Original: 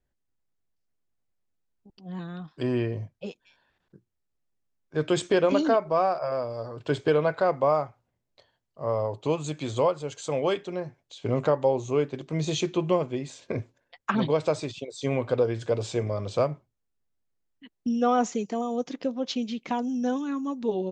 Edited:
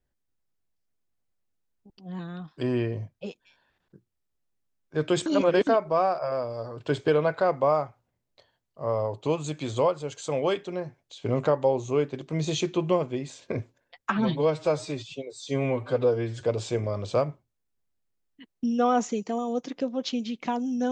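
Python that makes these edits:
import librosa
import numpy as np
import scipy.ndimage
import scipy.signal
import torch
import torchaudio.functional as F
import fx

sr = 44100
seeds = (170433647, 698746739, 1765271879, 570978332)

y = fx.edit(x, sr, fx.reverse_span(start_s=5.26, length_s=0.41),
    fx.stretch_span(start_s=14.1, length_s=1.54, factor=1.5), tone=tone)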